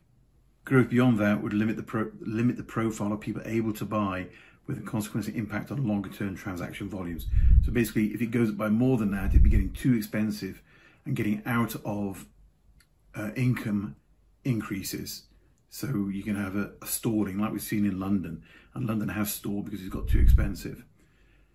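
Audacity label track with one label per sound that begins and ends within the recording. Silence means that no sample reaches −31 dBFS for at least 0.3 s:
0.670000	4.230000	sound
4.690000	10.510000	sound
11.070000	12.120000	sound
13.170000	13.880000	sound
14.460000	15.170000	sound
15.770000	18.350000	sound
18.760000	20.730000	sound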